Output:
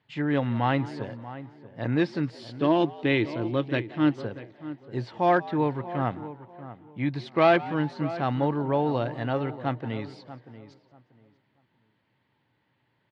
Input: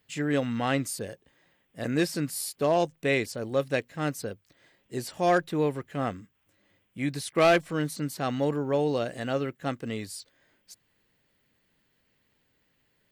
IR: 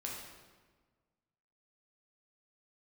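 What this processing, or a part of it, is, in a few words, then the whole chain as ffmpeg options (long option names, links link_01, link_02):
frequency-shifting delay pedal into a guitar cabinet: -filter_complex "[0:a]asettb=1/sr,asplit=3[link_01][link_02][link_03];[link_01]atrim=end=2.394[link_04];[link_02]atrim=start=2.39:end=4.22,asetpts=PTS-STARTPTS,afade=type=in:duration=0.004:curve=qsin,afade=type=out:start_time=1.826:duration=0.004:curve=qsin,equalizer=frequency=315:width_type=o:width=0.33:gain=11,equalizer=frequency=500:width_type=o:width=0.33:gain=-4,equalizer=frequency=800:width_type=o:width=0.33:gain=-10,equalizer=frequency=3150:width_type=o:width=0.33:gain=9[link_05];[link_03]atrim=start=4.216[link_06];[link_04][link_05]acrossfade=duration=0.004:curve1=hsin:curve2=qsin[link_07];[link_07][link_06]acrossfade=duration=0.004:curve1=qsin:curve2=hsin,asplit=2[link_08][link_09];[link_09]adelay=637,lowpass=frequency=1700:poles=1,volume=-14dB,asplit=2[link_10][link_11];[link_11]adelay=637,lowpass=frequency=1700:poles=1,volume=0.23,asplit=2[link_12][link_13];[link_13]adelay=637,lowpass=frequency=1700:poles=1,volume=0.23[link_14];[link_08][link_10][link_12][link_14]amix=inputs=4:normalize=0,asplit=4[link_15][link_16][link_17][link_18];[link_16]adelay=178,afreqshift=89,volume=-20dB[link_19];[link_17]adelay=356,afreqshift=178,volume=-28.9dB[link_20];[link_18]adelay=534,afreqshift=267,volume=-37.7dB[link_21];[link_15][link_19][link_20][link_21]amix=inputs=4:normalize=0,highpass=96,equalizer=frequency=120:width_type=q:width=4:gain=10,equalizer=frequency=320:width_type=q:width=4:gain=3,equalizer=frequency=460:width_type=q:width=4:gain=-3,equalizer=frequency=910:width_type=q:width=4:gain=10,equalizer=frequency=2700:width_type=q:width=4:gain=-3,lowpass=frequency=3800:width=0.5412,lowpass=frequency=3800:width=1.3066"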